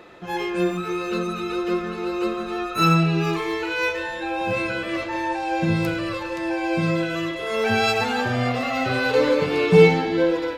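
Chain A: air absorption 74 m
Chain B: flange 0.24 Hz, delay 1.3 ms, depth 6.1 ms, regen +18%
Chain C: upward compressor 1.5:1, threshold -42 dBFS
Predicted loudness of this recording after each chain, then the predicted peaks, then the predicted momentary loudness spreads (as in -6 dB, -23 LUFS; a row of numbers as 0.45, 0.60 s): -22.5, -26.0, -22.0 LUFS; -2.0, -6.5, -2.0 dBFS; 9, 10, 9 LU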